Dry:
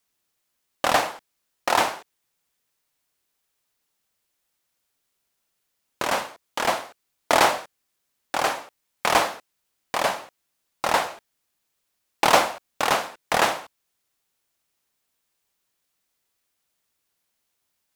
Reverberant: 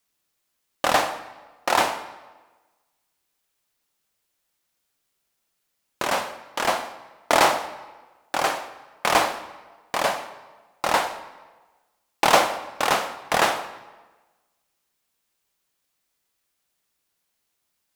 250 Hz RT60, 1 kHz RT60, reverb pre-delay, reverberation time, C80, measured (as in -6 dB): 1.2 s, 1.2 s, 3 ms, 1.3 s, 13.5 dB